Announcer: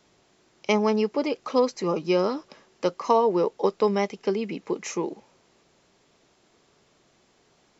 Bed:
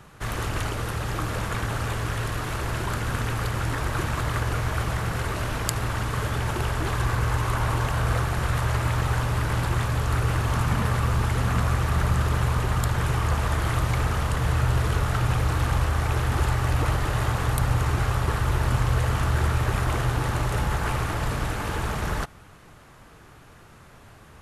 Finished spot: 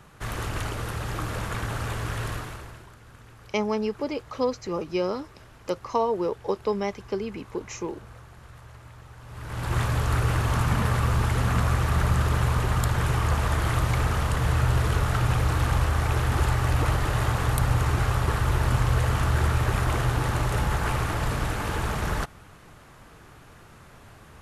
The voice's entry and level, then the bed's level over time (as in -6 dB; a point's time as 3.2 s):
2.85 s, -4.0 dB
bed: 2.33 s -2.5 dB
2.94 s -22.5 dB
9.17 s -22.5 dB
9.77 s 0 dB